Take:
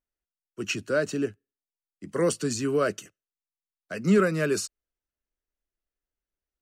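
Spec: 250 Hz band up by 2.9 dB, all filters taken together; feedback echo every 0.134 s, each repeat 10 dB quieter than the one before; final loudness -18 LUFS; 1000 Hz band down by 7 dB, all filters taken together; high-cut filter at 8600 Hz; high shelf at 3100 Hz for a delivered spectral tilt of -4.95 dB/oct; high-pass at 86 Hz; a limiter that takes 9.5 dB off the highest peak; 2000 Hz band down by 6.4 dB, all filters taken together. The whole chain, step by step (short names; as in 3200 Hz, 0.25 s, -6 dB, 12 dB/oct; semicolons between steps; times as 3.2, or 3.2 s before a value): HPF 86 Hz; LPF 8600 Hz; bell 250 Hz +4.5 dB; bell 1000 Hz -7.5 dB; bell 2000 Hz -7.5 dB; high shelf 3100 Hz +4 dB; limiter -19 dBFS; feedback echo 0.134 s, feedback 32%, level -10 dB; gain +11 dB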